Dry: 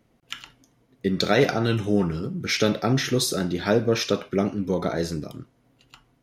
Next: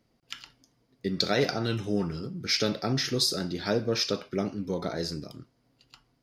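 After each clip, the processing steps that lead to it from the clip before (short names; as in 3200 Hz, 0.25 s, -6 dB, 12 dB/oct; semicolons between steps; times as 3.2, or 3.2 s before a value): bell 4800 Hz +12.5 dB 0.38 oct; gain -6.5 dB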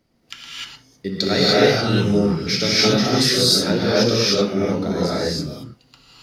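non-linear reverb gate 0.33 s rising, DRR -7.5 dB; gain +3 dB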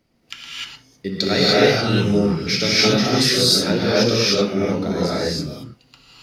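bell 2500 Hz +3.5 dB 0.51 oct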